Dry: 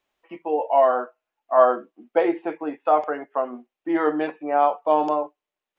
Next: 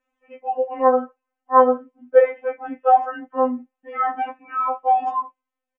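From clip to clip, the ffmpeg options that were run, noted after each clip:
ffmpeg -i in.wav -af "aemphasis=mode=reproduction:type=50fm,aecho=1:1:4:0.95,afftfilt=real='re*3.46*eq(mod(b,12),0)':imag='im*3.46*eq(mod(b,12),0)':win_size=2048:overlap=0.75" out.wav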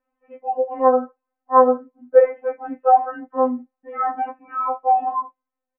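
ffmpeg -i in.wav -af "lowpass=1400,volume=1dB" out.wav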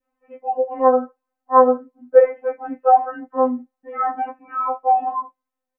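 ffmpeg -i in.wav -af "adynamicequalizer=threshold=0.0398:dfrequency=1000:dqfactor=1.1:tfrequency=1000:tqfactor=1.1:attack=5:release=100:ratio=0.375:range=2:mode=cutabove:tftype=bell,volume=1dB" out.wav

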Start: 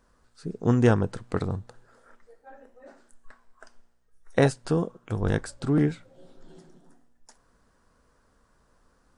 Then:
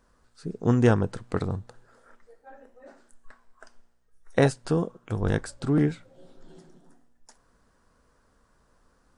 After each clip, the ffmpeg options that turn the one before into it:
ffmpeg -i in.wav -af anull out.wav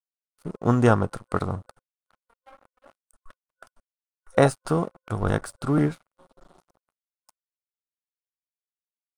ffmpeg -i in.wav -af "aeval=exprs='sgn(val(0))*max(abs(val(0))-0.00501,0)':channel_layout=same,superequalizer=8b=1.78:9b=1.78:10b=2.51:16b=2.24,volume=1dB" out.wav

